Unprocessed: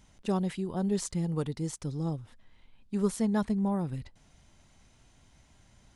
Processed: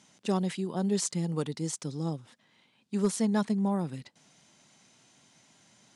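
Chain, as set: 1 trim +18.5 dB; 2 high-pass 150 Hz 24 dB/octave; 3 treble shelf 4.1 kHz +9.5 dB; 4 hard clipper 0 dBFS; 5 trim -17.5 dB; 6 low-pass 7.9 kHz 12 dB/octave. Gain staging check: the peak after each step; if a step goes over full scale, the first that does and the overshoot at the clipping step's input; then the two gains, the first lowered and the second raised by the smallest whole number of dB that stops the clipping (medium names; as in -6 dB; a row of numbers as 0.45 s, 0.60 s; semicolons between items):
+3.0 dBFS, +2.5 dBFS, +6.0 dBFS, 0.0 dBFS, -17.5 dBFS, -17.5 dBFS; step 1, 6.0 dB; step 1 +12.5 dB, step 5 -11.5 dB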